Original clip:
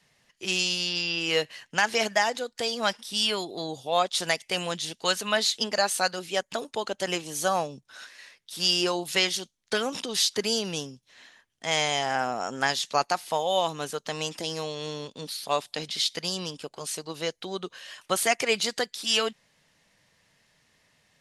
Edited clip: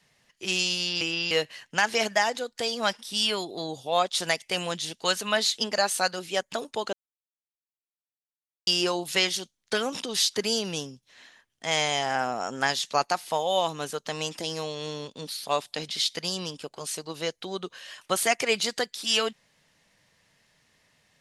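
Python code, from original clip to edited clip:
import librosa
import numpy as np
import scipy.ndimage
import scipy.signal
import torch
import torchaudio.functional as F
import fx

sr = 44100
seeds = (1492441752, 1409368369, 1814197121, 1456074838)

y = fx.edit(x, sr, fx.reverse_span(start_s=1.01, length_s=0.3),
    fx.silence(start_s=6.93, length_s=1.74), tone=tone)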